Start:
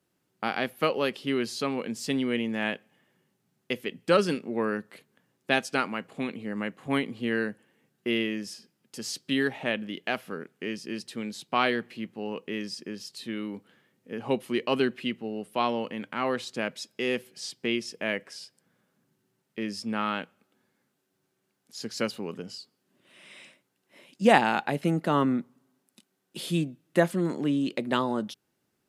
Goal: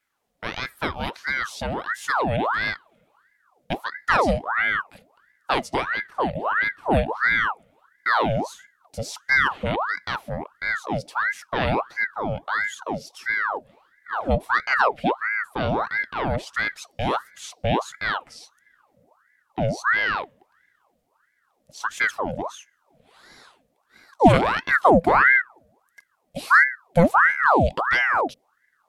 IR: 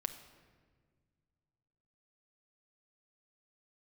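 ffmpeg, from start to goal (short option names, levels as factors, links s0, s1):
-af "asubboost=boost=10.5:cutoff=190,aeval=exprs='val(0)*sin(2*PI*1100*n/s+1100*0.7/1.5*sin(2*PI*1.5*n/s))':c=same,volume=1.26"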